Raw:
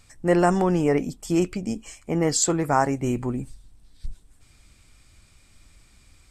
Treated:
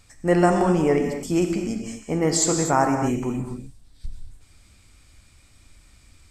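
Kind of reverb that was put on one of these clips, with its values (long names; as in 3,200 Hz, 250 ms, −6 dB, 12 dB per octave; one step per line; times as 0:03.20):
reverb whose tail is shaped and stops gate 280 ms flat, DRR 4 dB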